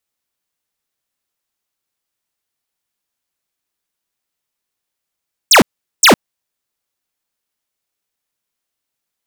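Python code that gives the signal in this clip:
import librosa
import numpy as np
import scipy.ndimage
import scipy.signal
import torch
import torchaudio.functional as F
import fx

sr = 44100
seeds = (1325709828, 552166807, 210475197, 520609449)

y = fx.laser_zaps(sr, level_db=-6, start_hz=9000.0, end_hz=160.0, length_s=0.11, wave='square', shots=2, gap_s=0.41)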